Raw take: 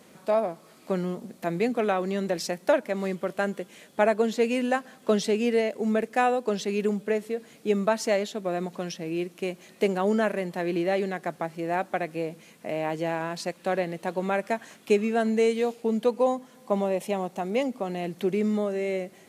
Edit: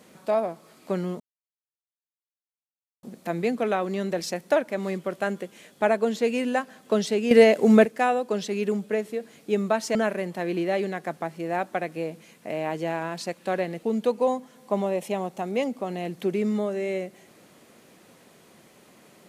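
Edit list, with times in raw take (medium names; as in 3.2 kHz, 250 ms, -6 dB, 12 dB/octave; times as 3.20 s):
1.20 s: insert silence 1.83 s
5.48–6.02 s: gain +9.5 dB
8.12–10.14 s: delete
14.02–15.82 s: delete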